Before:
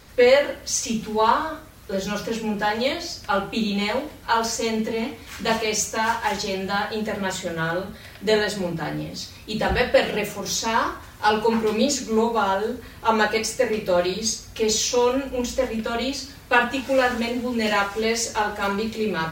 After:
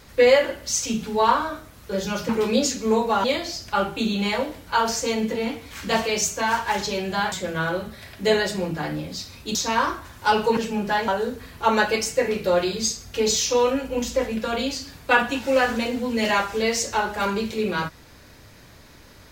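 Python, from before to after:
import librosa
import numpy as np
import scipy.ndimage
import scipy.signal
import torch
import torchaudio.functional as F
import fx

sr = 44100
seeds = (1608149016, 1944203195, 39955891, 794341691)

y = fx.edit(x, sr, fx.swap(start_s=2.29, length_s=0.51, other_s=11.55, other_length_s=0.95),
    fx.cut(start_s=6.88, length_s=0.46),
    fx.cut(start_s=9.57, length_s=0.96), tone=tone)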